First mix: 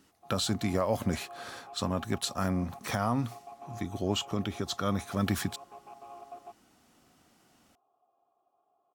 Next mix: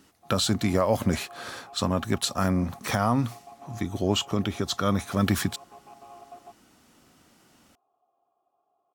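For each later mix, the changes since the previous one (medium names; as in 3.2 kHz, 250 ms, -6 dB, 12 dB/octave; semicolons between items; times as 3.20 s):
speech +5.5 dB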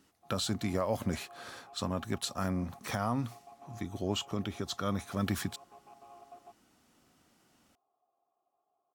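speech -8.5 dB; background -6.5 dB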